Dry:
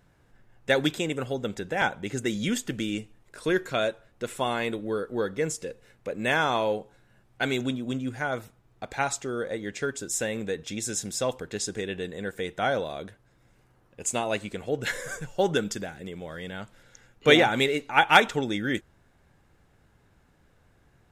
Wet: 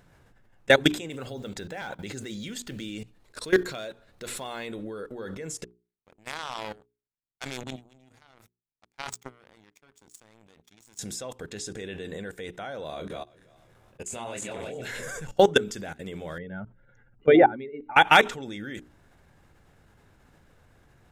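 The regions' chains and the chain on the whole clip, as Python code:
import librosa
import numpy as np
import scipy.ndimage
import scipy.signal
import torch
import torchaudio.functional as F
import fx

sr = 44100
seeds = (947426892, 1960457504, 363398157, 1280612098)

y = fx.chain(x, sr, fx.block_float(bits=7),
    fx.peak_eq(hz=4200.0, db=8.0, octaves=0.38),
    fx.clip_hard(threshold_db=-17.0), at=(1.1, 4.68))
y = fx.chain(y, sr, fx.comb(ms=0.9, depth=0.46),
    fx.power_curve(exponent=3.0),
    fx.sustainer(db_per_s=49.0), at=(5.64, 10.99))
y = fx.chain(y, sr, fx.reverse_delay_fb(ms=168, feedback_pct=41, wet_db=-4.0),
    fx.level_steps(step_db=21),
    fx.doubler(ms=25.0, db=-5.0), at=(12.9, 15.03))
y = fx.chain(y, sr, fx.spec_expand(power=1.7),
    fx.lowpass(hz=1700.0, slope=12),
    fx.notch(hz=480.0, q=8.6), at=(16.38, 17.96))
y = fx.level_steps(y, sr, step_db=22)
y = fx.hum_notches(y, sr, base_hz=60, count=7)
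y = y * 10.0 ** (8.0 / 20.0)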